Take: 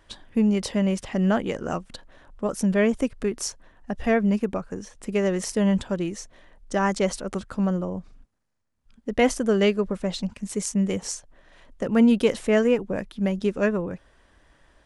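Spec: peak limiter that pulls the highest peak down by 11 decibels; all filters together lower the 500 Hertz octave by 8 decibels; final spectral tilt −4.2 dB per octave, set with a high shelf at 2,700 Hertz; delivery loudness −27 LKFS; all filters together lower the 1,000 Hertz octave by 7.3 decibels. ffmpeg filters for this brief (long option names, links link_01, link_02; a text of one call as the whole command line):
ffmpeg -i in.wav -af "equalizer=frequency=500:width_type=o:gain=-8.5,equalizer=frequency=1000:width_type=o:gain=-8,highshelf=frequency=2700:gain=8.5,volume=0.5dB,alimiter=limit=-14.5dB:level=0:latency=1" out.wav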